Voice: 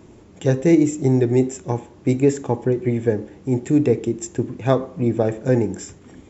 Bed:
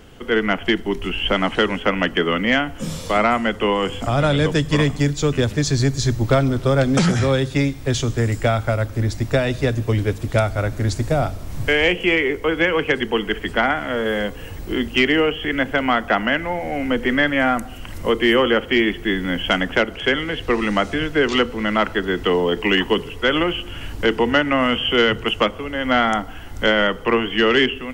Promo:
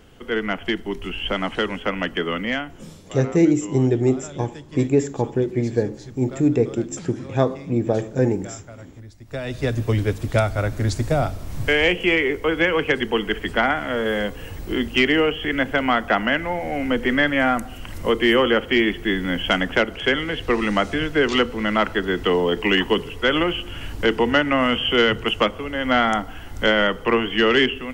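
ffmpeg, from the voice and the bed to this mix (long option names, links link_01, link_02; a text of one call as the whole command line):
ffmpeg -i stem1.wav -i stem2.wav -filter_complex "[0:a]adelay=2700,volume=-1.5dB[link_01];[1:a]volume=15dB,afade=type=out:start_time=2.38:duration=0.67:silence=0.158489,afade=type=in:start_time=9.25:duration=0.55:silence=0.1[link_02];[link_01][link_02]amix=inputs=2:normalize=0" out.wav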